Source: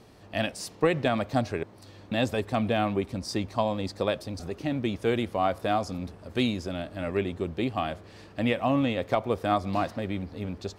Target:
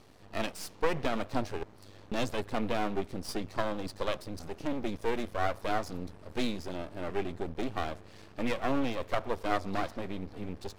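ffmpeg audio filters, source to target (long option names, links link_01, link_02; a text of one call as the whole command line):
ffmpeg -i in.wav -af "aeval=exprs='max(val(0),0)':channel_layout=same" out.wav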